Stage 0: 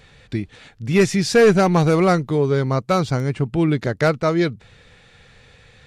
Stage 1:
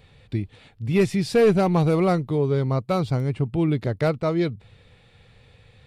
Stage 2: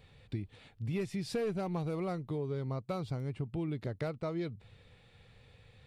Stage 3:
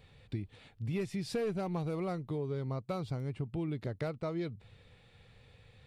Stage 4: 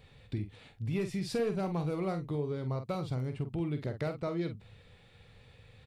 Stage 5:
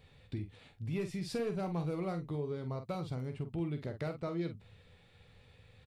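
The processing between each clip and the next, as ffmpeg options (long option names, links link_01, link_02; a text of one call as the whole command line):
ffmpeg -i in.wav -af "equalizer=frequency=100:width_type=o:width=0.67:gain=6,equalizer=frequency=1600:width_type=o:width=0.67:gain=-7,equalizer=frequency=6300:width_type=o:width=0.67:gain=-10,volume=-4dB" out.wav
ffmpeg -i in.wav -af "acompressor=threshold=-27dB:ratio=4,volume=-6.5dB" out.wav
ffmpeg -i in.wav -af anull out.wav
ffmpeg -i in.wav -filter_complex "[0:a]asplit=2[link_01][link_02];[link_02]adelay=47,volume=-8.5dB[link_03];[link_01][link_03]amix=inputs=2:normalize=0,volume=1.5dB" out.wav
ffmpeg -i in.wav -filter_complex "[0:a]asplit=2[link_01][link_02];[link_02]adelay=12,volume=-13dB[link_03];[link_01][link_03]amix=inputs=2:normalize=0,volume=-3.5dB" out.wav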